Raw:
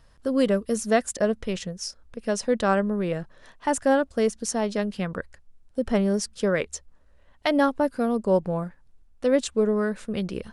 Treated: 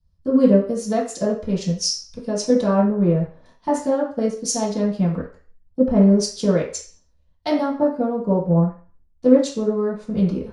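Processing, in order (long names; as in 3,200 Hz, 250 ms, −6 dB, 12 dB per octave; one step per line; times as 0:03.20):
downward compressor 2 to 1, threshold −38 dBFS, peak gain reduction 13 dB
convolution reverb RT60 0.55 s, pre-delay 3 ms, DRR −8.5 dB
multiband upward and downward expander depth 100%
level −2.5 dB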